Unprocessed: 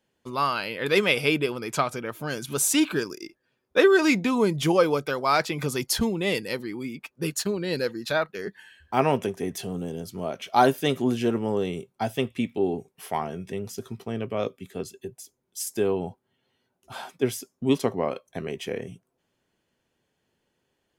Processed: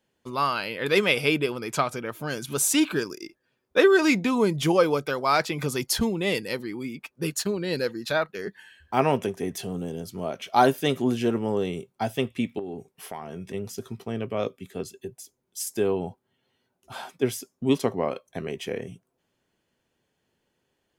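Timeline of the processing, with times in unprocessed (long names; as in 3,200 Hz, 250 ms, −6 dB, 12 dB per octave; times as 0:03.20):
0:12.59–0:13.54: downward compressor, threshold −31 dBFS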